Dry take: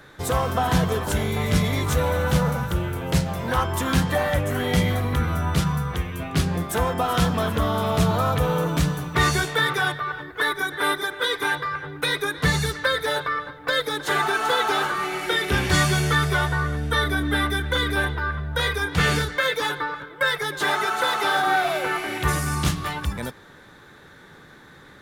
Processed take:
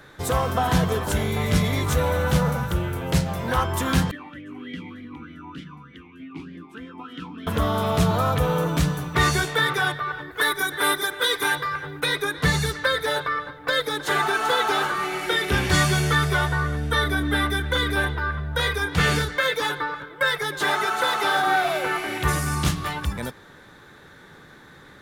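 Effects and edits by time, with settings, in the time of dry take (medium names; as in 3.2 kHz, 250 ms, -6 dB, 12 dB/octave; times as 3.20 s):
4.11–7.47 s: talking filter i-u 3.3 Hz
10.31–12.00 s: treble shelf 5.3 kHz +9.5 dB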